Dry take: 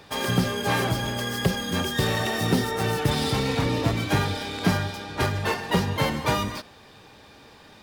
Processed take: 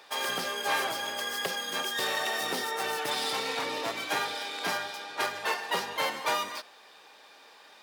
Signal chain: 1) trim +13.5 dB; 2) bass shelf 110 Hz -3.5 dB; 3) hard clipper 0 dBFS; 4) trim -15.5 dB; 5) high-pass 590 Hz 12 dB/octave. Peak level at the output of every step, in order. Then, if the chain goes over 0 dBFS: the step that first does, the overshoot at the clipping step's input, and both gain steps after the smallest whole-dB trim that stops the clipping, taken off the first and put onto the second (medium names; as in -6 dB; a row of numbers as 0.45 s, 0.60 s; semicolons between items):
+6.0 dBFS, +5.0 dBFS, 0.0 dBFS, -15.5 dBFS, -14.5 dBFS; step 1, 5.0 dB; step 1 +8.5 dB, step 4 -10.5 dB